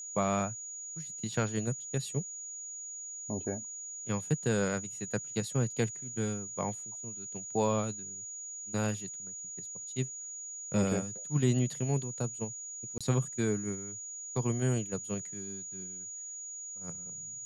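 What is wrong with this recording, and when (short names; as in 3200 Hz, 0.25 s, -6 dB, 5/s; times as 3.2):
tone 6800 Hz -40 dBFS
12.98–13.01 gap 26 ms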